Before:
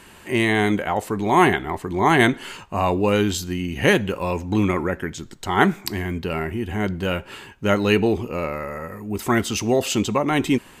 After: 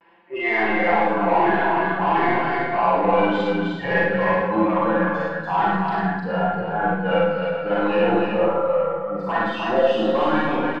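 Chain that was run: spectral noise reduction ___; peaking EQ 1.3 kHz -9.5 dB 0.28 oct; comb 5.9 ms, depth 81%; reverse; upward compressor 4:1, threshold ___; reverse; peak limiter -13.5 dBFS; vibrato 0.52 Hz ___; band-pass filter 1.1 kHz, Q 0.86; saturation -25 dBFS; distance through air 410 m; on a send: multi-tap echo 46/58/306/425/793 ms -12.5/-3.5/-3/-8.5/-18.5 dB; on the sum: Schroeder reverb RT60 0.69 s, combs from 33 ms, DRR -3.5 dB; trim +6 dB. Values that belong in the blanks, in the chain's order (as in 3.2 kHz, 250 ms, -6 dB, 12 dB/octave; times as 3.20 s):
22 dB, -27 dBFS, 46 cents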